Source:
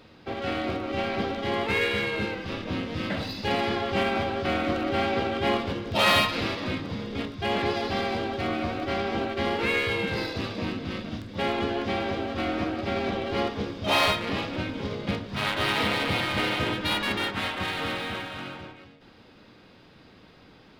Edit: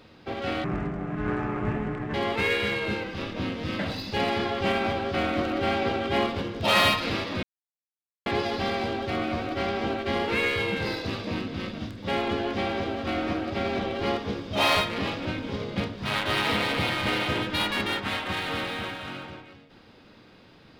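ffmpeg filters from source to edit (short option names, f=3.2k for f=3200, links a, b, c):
-filter_complex "[0:a]asplit=5[a][b][c][d][e];[a]atrim=end=0.644[f];[b]atrim=start=0.64:end=1.45,asetpts=PTS-STARTPTS,asetrate=23814,aresample=44100[g];[c]atrim=start=1.446:end=6.74,asetpts=PTS-STARTPTS,afade=t=out:st=5.29:d=0.004:c=hsin[h];[d]atrim=start=6.74:end=7.57,asetpts=PTS-STARTPTS,volume=0[i];[e]atrim=start=7.57,asetpts=PTS-STARTPTS,afade=t=in:d=0.004:c=hsin[j];[f][g]acrossfade=d=0.004:c1=hsin:c2=hsin[k];[h][i][j]concat=n=3:v=0:a=1[l];[k][l]acrossfade=d=0.004:c1=hsin:c2=hsin"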